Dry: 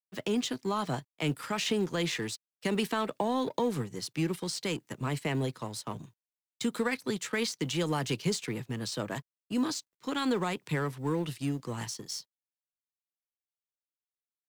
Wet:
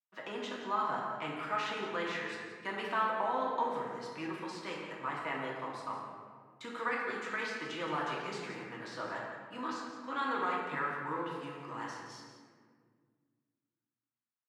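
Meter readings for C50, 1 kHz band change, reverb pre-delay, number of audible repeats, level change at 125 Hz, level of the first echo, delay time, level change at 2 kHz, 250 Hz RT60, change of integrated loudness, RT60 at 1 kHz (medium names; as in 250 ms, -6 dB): 0.0 dB, +3.0 dB, 3 ms, 1, -16.0 dB, -9.5 dB, 172 ms, +0.5 dB, 2.6 s, -4.0 dB, 1.6 s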